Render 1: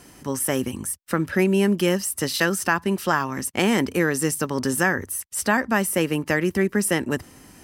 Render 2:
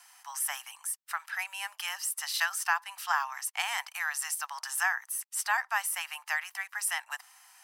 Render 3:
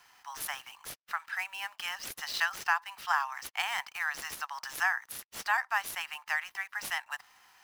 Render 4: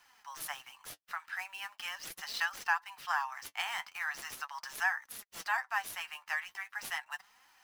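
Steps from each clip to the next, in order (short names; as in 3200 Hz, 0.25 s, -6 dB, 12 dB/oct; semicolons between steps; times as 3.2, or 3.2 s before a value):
steep high-pass 750 Hz 72 dB/oct; gain -5.5 dB
median filter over 5 samples
flange 0.4 Hz, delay 3.2 ms, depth 8.9 ms, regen +35%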